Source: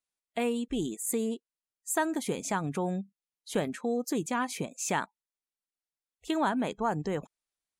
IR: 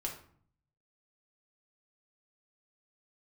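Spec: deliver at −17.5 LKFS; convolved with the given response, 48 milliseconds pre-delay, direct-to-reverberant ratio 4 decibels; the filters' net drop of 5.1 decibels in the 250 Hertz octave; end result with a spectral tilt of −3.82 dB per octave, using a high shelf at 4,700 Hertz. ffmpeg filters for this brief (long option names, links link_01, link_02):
-filter_complex "[0:a]equalizer=frequency=250:width_type=o:gain=-6.5,highshelf=frequency=4700:gain=4.5,asplit=2[link_01][link_02];[1:a]atrim=start_sample=2205,adelay=48[link_03];[link_02][link_03]afir=irnorm=-1:irlink=0,volume=-4.5dB[link_04];[link_01][link_04]amix=inputs=2:normalize=0,volume=14dB"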